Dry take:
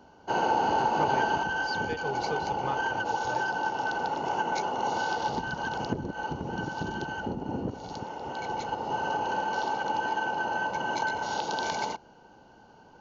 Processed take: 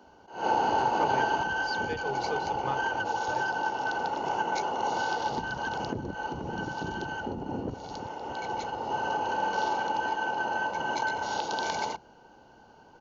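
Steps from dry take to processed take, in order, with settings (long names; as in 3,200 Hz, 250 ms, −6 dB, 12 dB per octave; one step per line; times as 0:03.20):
0:09.37–0:09.86: double-tracking delay 46 ms −4 dB
multiband delay without the direct sound highs, lows 30 ms, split 170 Hz
level that may rise only so fast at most 140 dB per second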